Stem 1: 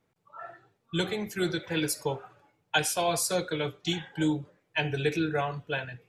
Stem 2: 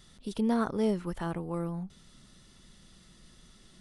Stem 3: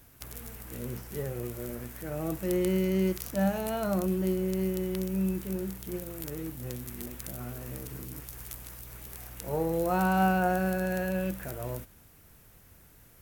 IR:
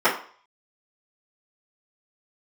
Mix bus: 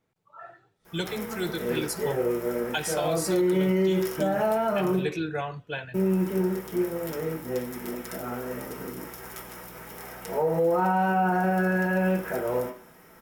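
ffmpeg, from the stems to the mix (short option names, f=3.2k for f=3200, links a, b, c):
-filter_complex "[0:a]volume=-2dB[a];[1:a]aeval=exprs='val(0)*pow(10,-27*if(lt(mod(-6.2*n/s,1),2*abs(-6.2)/1000),1-mod(-6.2*n/s,1)/(2*abs(-6.2)/1000),(mod(-6.2*n/s,1)-2*abs(-6.2)/1000)/(1-2*abs(-6.2)/1000))/20)':c=same,adelay=700,volume=-12dB,asplit=2[b][c];[c]volume=-15dB[d];[2:a]adelay=850,volume=-4dB,asplit=3[e][f][g];[e]atrim=end=4.99,asetpts=PTS-STARTPTS,afade=t=out:st=4.986:d=0.004:c=hsin[h];[f]atrim=start=4.99:end=5.94,asetpts=PTS-STARTPTS,volume=0[i];[g]atrim=start=5.94,asetpts=PTS-STARTPTS,afade=t=in:d=0.004:c=hsin[j];[h][i][j]concat=n=3:v=0:a=1,asplit=2[k][l];[l]volume=-6dB[m];[3:a]atrim=start_sample=2205[n];[d][m]amix=inputs=2:normalize=0[o];[o][n]afir=irnorm=-1:irlink=0[p];[a][b][k][p]amix=inputs=4:normalize=0,alimiter=limit=-16.5dB:level=0:latency=1:release=114"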